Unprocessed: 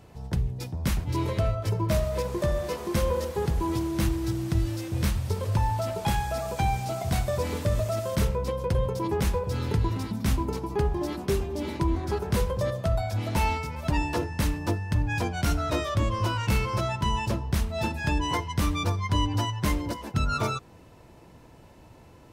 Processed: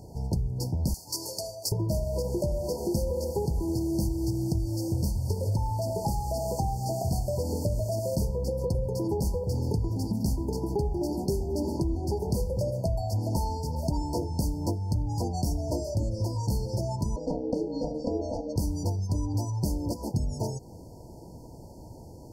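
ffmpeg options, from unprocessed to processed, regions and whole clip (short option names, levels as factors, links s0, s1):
-filter_complex "[0:a]asettb=1/sr,asplit=3[s0][s1][s2];[s0]atrim=end=0.944[s3];[s1]atrim=start=0.94:end=1.72,asetpts=PTS-STARTPTS,afade=t=in:d=0.004:c=qsin,afade=t=out:st=0.776:d=0.004:c=qsin,highpass=f=930:p=1,tiltshelf=f=1300:g=-9[s4];[s2]atrim=start=1.716[s5];[s3][s4]acrossfade=d=0.004:c1=hsin:c2=qsin[s6];[s6][s5]acrossfade=d=0.004:c1=qsin:c2=hsin,asettb=1/sr,asplit=3[s7][s8][s9];[s7]atrim=end=17.164[s10];[s8]atrim=start=17.16:end=18.56,asetpts=PTS-STARTPTS,afade=t=in:d=0.004:c=qsin,afade=t=out:st=1.396:d=0.004:c=qsin,lowpass=3700,aeval=exprs='val(0)*sin(2*PI*380*n/s)':c=same[s11];[s9]atrim=start=18.556[s12];[s10][s11]acrossfade=d=0.004:c1=hsin:c2=qsin[s13];[s13][s12]acrossfade=d=0.004:c1=qsin:c2=hsin,acompressor=threshold=0.0282:ratio=6,equalizer=f=1200:t=o:w=1.6:g=-4,afftfilt=real='re*(1-between(b*sr/4096,980,4300))':imag='im*(1-between(b*sr/4096,980,4300))':win_size=4096:overlap=0.75,volume=2.11"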